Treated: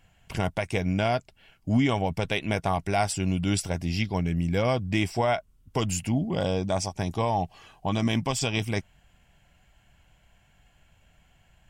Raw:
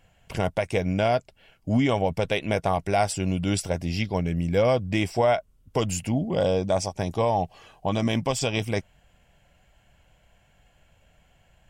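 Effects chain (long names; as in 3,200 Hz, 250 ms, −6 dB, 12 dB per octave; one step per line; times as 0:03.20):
parametric band 530 Hz −7 dB 0.66 octaves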